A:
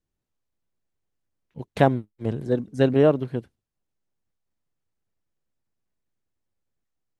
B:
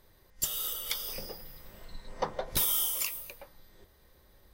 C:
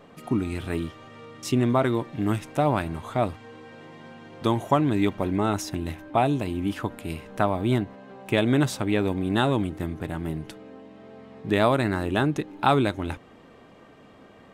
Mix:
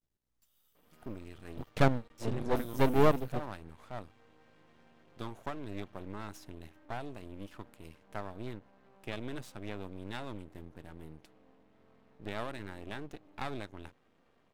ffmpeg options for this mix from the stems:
ffmpeg -i stem1.wav -i stem2.wav -i stem3.wav -filter_complex "[0:a]volume=-1.5dB,asplit=2[link_01][link_02];[1:a]acompressor=threshold=-34dB:ratio=2.5,aeval=exprs='val(0)+0.002*(sin(2*PI*60*n/s)+sin(2*PI*2*60*n/s)/2+sin(2*PI*3*60*n/s)/3+sin(2*PI*4*60*n/s)/4+sin(2*PI*5*60*n/s)/5)':channel_layout=same,volume=-16dB[link_03];[2:a]adelay=750,volume=-15dB[link_04];[link_02]apad=whole_len=200033[link_05];[link_03][link_05]sidechaingate=range=-18dB:threshold=-42dB:ratio=16:detection=peak[link_06];[link_01][link_06][link_04]amix=inputs=3:normalize=0,aeval=exprs='max(val(0),0)':channel_layout=same" out.wav

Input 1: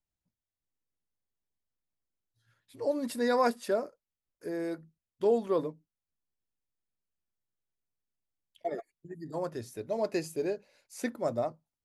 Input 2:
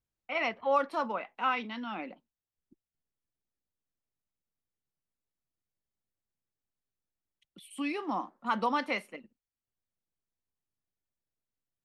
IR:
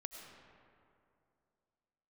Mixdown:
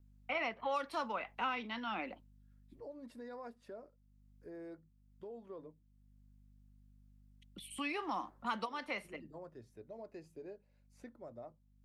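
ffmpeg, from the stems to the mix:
-filter_complex "[0:a]lowpass=frequency=1800:poles=1,alimiter=level_in=2.5dB:limit=-24dB:level=0:latency=1:release=247,volume=-2.5dB,volume=-13.5dB,asplit=2[link_01][link_02];[1:a]aeval=exprs='val(0)+0.000631*(sin(2*PI*50*n/s)+sin(2*PI*2*50*n/s)/2+sin(2*PI*3*50*n/s)/3+sin(2*PI*4*50*n/s)/4+sin(2*PI*5*50*n/s)/5)':channel_layout=same,volume=2dB[link_03];[link_02]apad=whole_len=522162[link_04];[link_03][link_04]sidechaincompress=threshold=-56dB:ratio=12:attack=40:release=709[link_05];[link_01][link_05]amix=inputs=2:normalize=0,acrossover=split=530|1100|2500[link_06][link_07][link_08][link_09];[link_06]acompressor=threshold=-46dB:ratio=4[link_10];[link_07]acompressor=threshold=-43dB:ratio=4[link_11];[link_08]acompressor=threshold=-42dB:ratio=4[link_12];[link_09]acompressor=threshold=-47dB:ratio=4[link_13];[link_10][link_11][link_12][link_13]amix=inputs=4:normalize=0"

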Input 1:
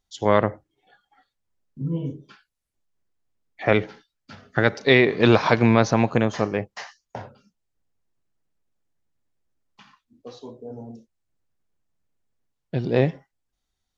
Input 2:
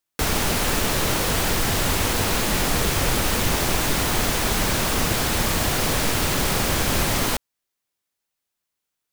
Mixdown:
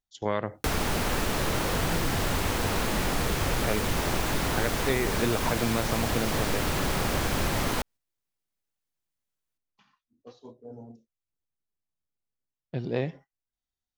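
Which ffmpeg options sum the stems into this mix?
ffmpeg -i stem1.wav -i stem2.wav -filter_complex "[0:a]volume=-6.5dB[link_01];[1:a]adelay=450,volume=-2.5dB[link_02];[link_01][link_02]amix=inputs=2:normalize=0,agate=range=-7dB:threshold=-45dB:ratio=16:detection=peak,acrossover=split=2000|5500[link_03][link_04][link_05];[link_03]acompressor=threshold=-23dB:ratio=4[link_06];[link_04]acompressor=threshold=-38dB:ratio=4[link_07];[link_05]acompressor=threshold=-38dB:ratio=4[link_08];[link_06][link_07][link_08]amix=inputs=3:normalize=0" out.wav

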